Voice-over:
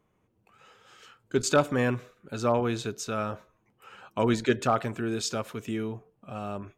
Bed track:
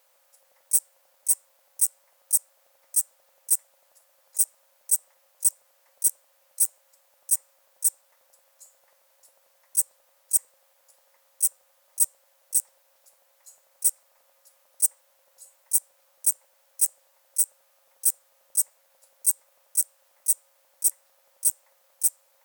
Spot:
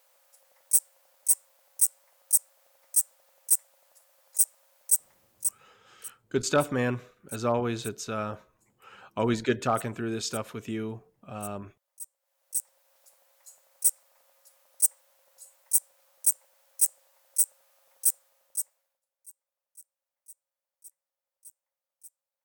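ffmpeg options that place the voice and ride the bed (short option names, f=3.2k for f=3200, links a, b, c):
-filter_complex "[0:a]adelay=5000,volume=-1.5dB[a];[1:a]volume=18.5dB,afade=t=out:st=5.09:d=0.68:silence=0.105925,afade=t=in:st=12.19:d=0.85:silence=0.112202,afade=t=out:st=18.01:d=1:silence=0.0446684[b];[a][b]amix=inputs=2:normalize=0"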